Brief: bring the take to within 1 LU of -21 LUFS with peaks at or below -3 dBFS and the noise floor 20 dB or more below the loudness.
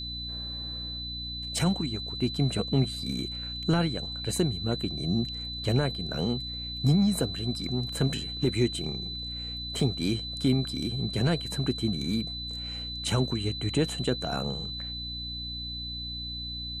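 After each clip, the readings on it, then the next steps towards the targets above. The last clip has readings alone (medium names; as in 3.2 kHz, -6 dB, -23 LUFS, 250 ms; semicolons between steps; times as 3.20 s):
hum 60 Hz; highest harmonic 300 Hz; hum level -38 dBFS; steady tone 4 kHz; tone level -35 dBFS; loudness -29.5 LUFS; peak level -13.0 dBFS; loudness target -21.0 LUFS
-> de-hum 60 Hz, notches 5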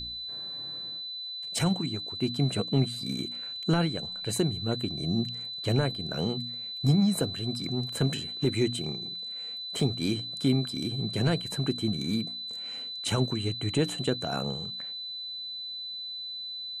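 hum not found; steady tone 4 kHz; tone level -35 dBFS
-> band-stop 4 kHz, Q 30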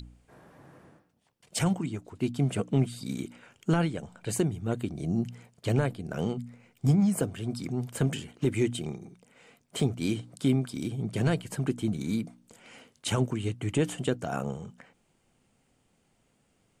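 steady tone not found; loudness -30.5 LUFS; peak level -13.0 dBFS; loudness target -21.0 LUFS
-> trim +9.5 dB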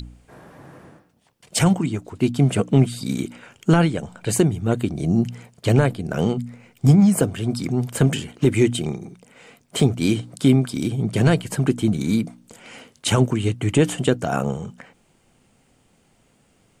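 loudness -21.0 LUFS; peak level -3.5 dBFS; noise floor -61 dBFS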